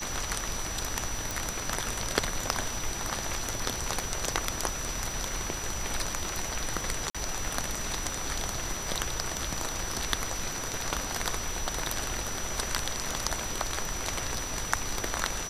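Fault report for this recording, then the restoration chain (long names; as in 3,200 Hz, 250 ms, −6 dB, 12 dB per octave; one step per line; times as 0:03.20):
surface crackle 24 per second −40 dBFS
whistle 5,900 Hz −37 dBFS
0:01.31: click
0:07.10–0:07.15: drop-out 46 ms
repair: click removal
notch filter 5,900 Hz, Q 30
repair the gap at 0:07.10, 46 ms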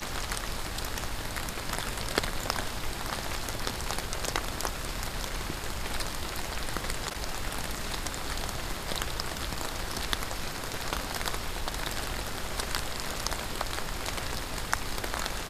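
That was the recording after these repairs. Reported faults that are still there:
none of them is left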